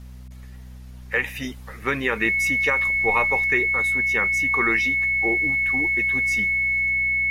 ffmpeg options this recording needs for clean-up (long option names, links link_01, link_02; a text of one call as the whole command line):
ffmpeg -i in.wav -af "bandreject=frequency=62.7:width_type=h:width=4,bandreject=frequency=125.4:width_type=h:width=4,bandreject=frequency=188.1:width_type=h:width=4,bandreject=frequency=250.8:width_type=h:width=4,bandreject=frequency=2200:width=30" out.wav